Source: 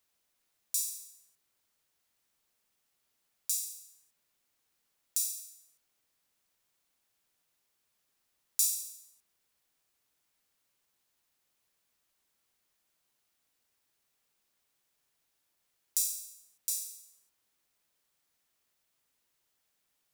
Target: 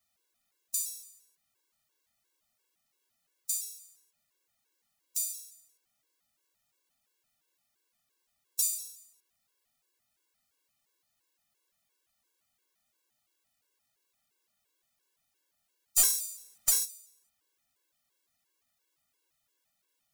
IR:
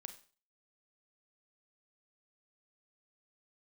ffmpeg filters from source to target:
-filter_complex "[0:a]asplit=3[a][b][c];[a]afade=t=out:st=15.97:d=0.02[d];[b]aeval=exprs='0.316*(cos(1*acos(clip(val(0)/0.316,-1,1)))-cos(1*PI/2))+0.1*(cos(4*acos(clip(val(0)/0.316,-1,1)))-cos(4*PI/2))+0.126*(cos(5*acos(clip(val(0)/0.316,-1,1)))-cos(5*PI/2))':c=same,afade=t=in:st=15.97:d=0.02,afade=t=out:st=16.84:d=0.02[e];[c]afade=t=in:st=16.84:d=0.02[f];[d][e][f]amix=inputs=3:normalize=0,afftfilt=real='re*gt(sin(2*PI*2.9*pts/sr)*(1-2*mod(floor(b*sr/1024/290),2)),0)':imag='im*gt(sin(2*PI*2.9*pts/sr)*(1-2*mod(floor(b*sr/1024/290),2)),0)':win_size=1024:overlap=0.75,volume=2.5dB"

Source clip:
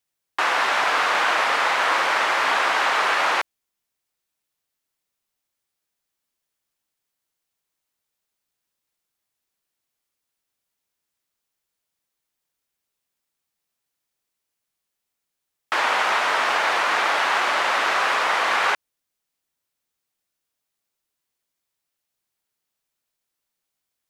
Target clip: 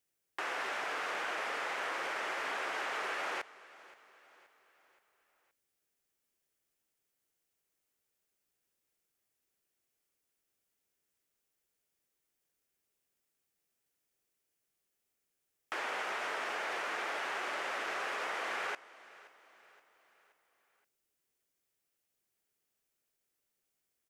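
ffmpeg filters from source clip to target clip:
-filter_complex "[0:a]equalizer=f=400:t=o:w=0.67:g=5,equalizer=f=1k:t=o:w=0.67:g=-5,equalizer=f=4k:t=o:w=0.67:g=-5,asplit=2[a][b];[b]alimiter=limit=-18dB:level=0:latency=1,volume=1dB[c];[a][c]amix=inputs=2:normalize=0,acompressor=threshold=-46dB:ratio=1.5,aecho=1:1:524|1048|1572|2096:0.1|0.048|0.023|0.0111,volume=-8.5dB"

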